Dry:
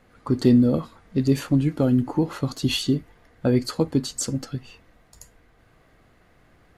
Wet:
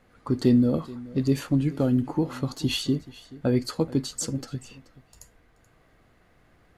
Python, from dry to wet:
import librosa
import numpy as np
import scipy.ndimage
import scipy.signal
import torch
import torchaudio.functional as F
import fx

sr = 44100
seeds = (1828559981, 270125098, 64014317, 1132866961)

y = x + 10.0 ** (-19.5 / 20.0) * np.pad(x, (int(430 * sr / 1000.0), 0))[:len(x)]
y = F.gain(torch.from_numpy(y), -3.0).numpy()